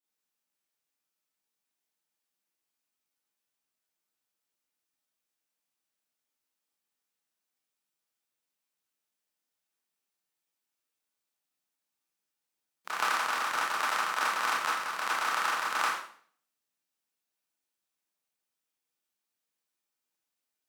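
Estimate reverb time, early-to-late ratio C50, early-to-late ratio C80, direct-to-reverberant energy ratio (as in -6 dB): 0.55 s, 2.0 dB, 7.5 dB, -8.0 dB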